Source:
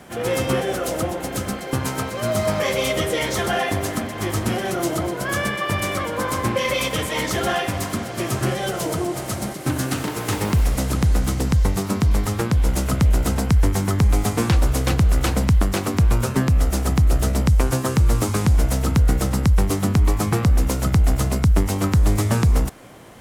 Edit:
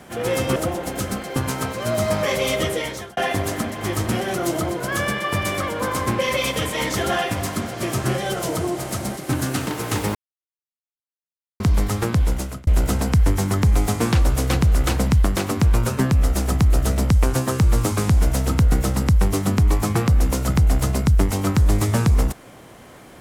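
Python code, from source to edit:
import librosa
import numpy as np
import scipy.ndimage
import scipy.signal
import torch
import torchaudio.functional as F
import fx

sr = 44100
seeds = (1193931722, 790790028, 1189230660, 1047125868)

y = fx.edit(x, sr, fx.cut(start_s=0.56, length_s=0.37),
    fx.fade_out_span(start_s=3.03, length_s=0.51),
    fx.silence(start_s=10.52, length_s=1.45),
    fx.fade_out_span(start_s=12.59, length_s=0.45), tone=tone)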